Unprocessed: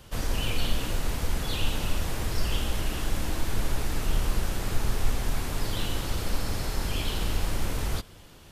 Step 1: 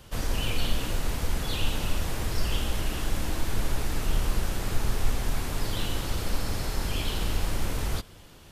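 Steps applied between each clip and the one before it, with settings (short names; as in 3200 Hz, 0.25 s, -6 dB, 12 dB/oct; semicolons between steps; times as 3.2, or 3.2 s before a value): nothing audible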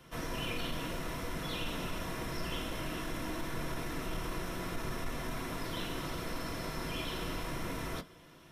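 soft clip -12.5 dBFS, distortion -26 dB; reverb RT60 0.15 s, pre-delay 3 ms, DRR 3.5 dB; gain -9 dB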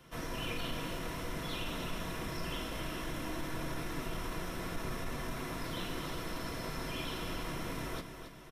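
feedback echo 0.274 s, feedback 51%, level -9.5 dB; gain -1.5 dB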